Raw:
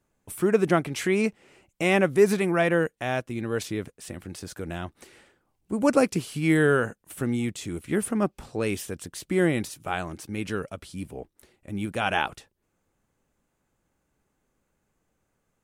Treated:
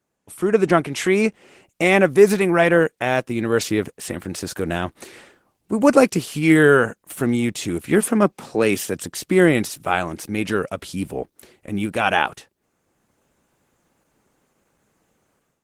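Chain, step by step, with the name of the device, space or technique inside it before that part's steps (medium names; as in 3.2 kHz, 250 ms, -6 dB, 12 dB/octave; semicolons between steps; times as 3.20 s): 8.00–9.00 s: high-pass 190 Hz -> 84 Hz 24 dB/octave; video call (high-pass 160 Hz 6 dB/octave; level rider gain up to 12 dB; Opus 16 kbps 48 kHz)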